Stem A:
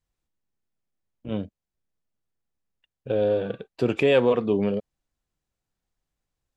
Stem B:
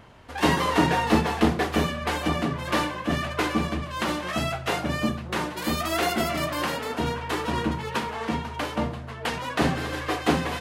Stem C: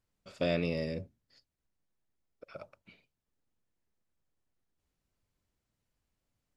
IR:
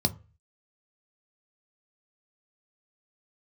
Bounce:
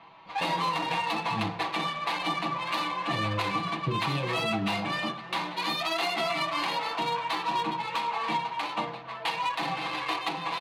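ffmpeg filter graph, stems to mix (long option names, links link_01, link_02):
-filter_complex "[0:a]adelay=50,volume=-12.5dB,asplit=2[link_01][link_02];[link_02]volume=-7.5dB[link_03];[1:a]lowpass=5700,alimiter=limit=-13dB:level=0:latency=1:release=409,highpass=710,volume=-1dB,asplit=3[link_04][link_05][link_06];[link_05]volume=-6.5dB[link_07];[link_06]volume=-17.5dB[link_08];[2:a]volume=-4dB[link_09];[3:a]atrim=start_sample=2205[link_10];[link_03][link_07]amix=inputs=2:normalize=0[link_11];[link_11][link_10]afir=irnorm=-1:irlink=0[link_12];[link_08]aecho=0:1:281|562|843|1124|1405|1686|1967|2248:1|0.54|0.292|0.157|0.085|0.0459|0.0248|0.0134[link_13];[link_01][link_04][link_09][link_12][link_13]amix=inputs=5:normalize=0,aecho=1:1:6.1:0.82,adynamicsmooth=sensitivity=3.5:basefreq=3400,alimiter=limit=-19dB:level=0:latency=1:release=169"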